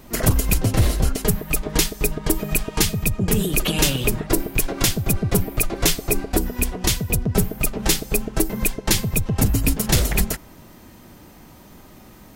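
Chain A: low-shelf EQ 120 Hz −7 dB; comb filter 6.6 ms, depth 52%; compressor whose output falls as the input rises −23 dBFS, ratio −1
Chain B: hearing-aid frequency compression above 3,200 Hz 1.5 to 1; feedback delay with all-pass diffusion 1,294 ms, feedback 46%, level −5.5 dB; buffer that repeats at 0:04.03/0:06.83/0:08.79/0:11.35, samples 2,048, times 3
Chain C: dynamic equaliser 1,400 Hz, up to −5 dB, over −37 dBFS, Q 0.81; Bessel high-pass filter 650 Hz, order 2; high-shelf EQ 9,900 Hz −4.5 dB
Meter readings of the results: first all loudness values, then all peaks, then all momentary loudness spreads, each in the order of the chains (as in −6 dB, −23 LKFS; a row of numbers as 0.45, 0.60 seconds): −25.5, −21.5, −26.0 LKFS; −7.5, −3.5, −5.5 dBFS; 20, 6, 7 LU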